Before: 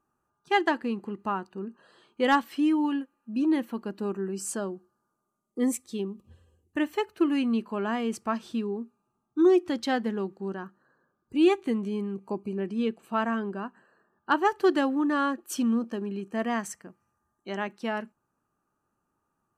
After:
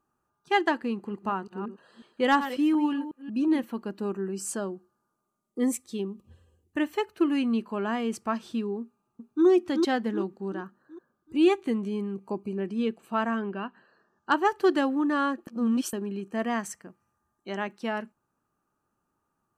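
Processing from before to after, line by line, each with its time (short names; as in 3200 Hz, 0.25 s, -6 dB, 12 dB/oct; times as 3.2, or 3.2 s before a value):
0.93–3.64 reverse delay 0.182 s, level -11 dB
8.81–9.46 echo throw 0.38 s, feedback 45%, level -3.5 dB
13.41–14.34 synth low-pass 2400 Hz -> 7700 Hz, resonance Q 2.8
15.47–15.93 reverse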